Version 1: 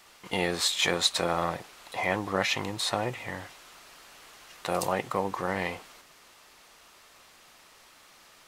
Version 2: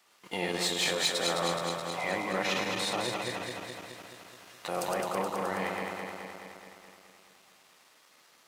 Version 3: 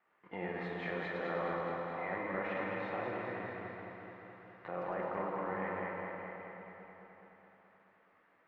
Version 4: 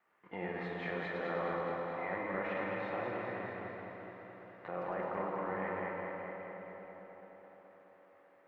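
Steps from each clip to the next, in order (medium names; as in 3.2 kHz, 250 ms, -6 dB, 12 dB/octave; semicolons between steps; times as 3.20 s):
backward echo that repeats 106 ms, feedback 81%, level -3.5 dB; high-pass 160 Hz 12 dB/octave; waveshaping leveller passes 1; trim -8.5 dB
Chebyshev low-pass 1.9 kHz, order 3; plate-style reverb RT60 3.8 s, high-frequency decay 0.85×, DRR 1 dB; trim -7 dB
feedback echo behind a band-pass 341 ms, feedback 70%, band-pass 460 Hz, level -13.5 dB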